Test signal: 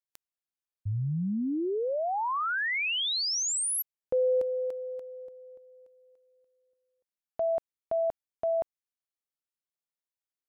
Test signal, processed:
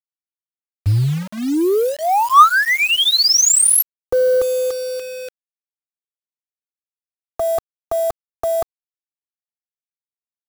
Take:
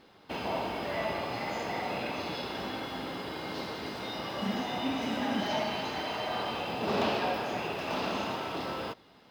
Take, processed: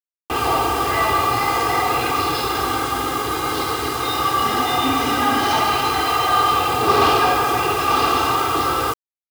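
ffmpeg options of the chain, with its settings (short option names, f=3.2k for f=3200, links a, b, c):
-filter_complex "[0:a]anlmdn=0.251,equalizer=f=1.2k:w=4.1:g=13.5,aecho=1:1:2.5:0.99,acrossover=split=170|1000[a][b][c];[a]acontrast=62[d];[d][b][c]amix=inputs=3:normalize=0,acrusher=bits=6:mix=0:aa=0.000001,asplit=2[e][f];[f]asoftclip=type=hard:threshold=-24dB,volume=-5dB[g];[e][g]amix=inputs=2:normalize=0,adynamicequalizer=threshold=0.0141:dfrequency=3600:dqfactor=0.7:tfrequency=3600:tqfactor=0.7:attack=5:release=100:ratio=0.375:range=2.5:mode=boostabove:tftype=highshelf,volume=5dB"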